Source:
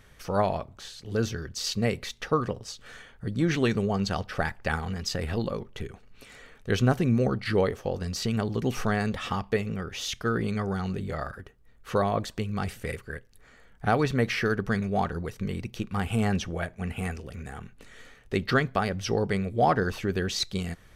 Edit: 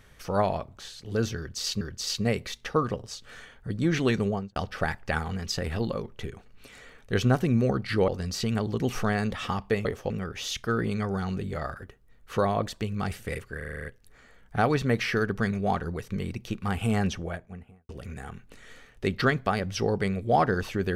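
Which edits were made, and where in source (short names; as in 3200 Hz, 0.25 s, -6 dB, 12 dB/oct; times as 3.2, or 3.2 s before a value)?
1.38–1.81 loop, 2 plays
3.83–4.13 studio fade out
7.65–7.9 move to 9.67
13.14 stutter 0.04 s, 8 plays
16.33–17.18 studio fade out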